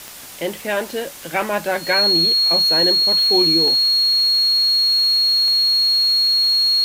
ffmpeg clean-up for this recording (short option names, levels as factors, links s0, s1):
-af "adeclick=t=4,bandreject=f=4300:w=30,afftdn=nr=30:nf=-34"